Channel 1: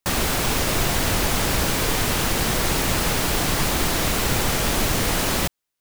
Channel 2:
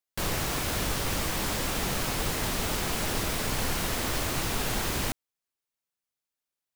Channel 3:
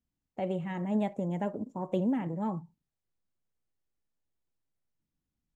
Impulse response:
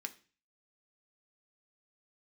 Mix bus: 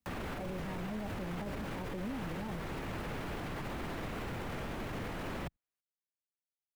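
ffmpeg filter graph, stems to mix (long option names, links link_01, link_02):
-filter_complex "[0:a]volume=-11dB[link_01];[2:a]volume=-1dB[link_02];[link_01][link_02]amix=inputs=2:normalize=0,acrossover=split=84|430|2800[link_03][link_04][link_05][link_06];[link_03]acompressor=threshold=-41dB:ratio=4[link_07];[link_04]acompressor=threshold=-33dB:ratio=4[link_08];[link_05]acompressor=threshold=-39dB:ratio=4[link_09];[link_06]acompressor=threshold=-60dB:ratio=4[link_10];[link_07][link_08][link_09][link_10]amix=inputs=4:normalize=0,alimiter=level_in=7.5dB:limit=-24dB:level=0:latency=1:release=21,volume=-7.5dB"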